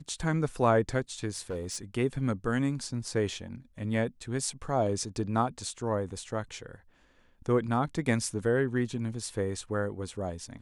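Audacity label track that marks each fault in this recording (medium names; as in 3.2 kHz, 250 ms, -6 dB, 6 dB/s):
1.350000	1.780000	clipped -30 dBFS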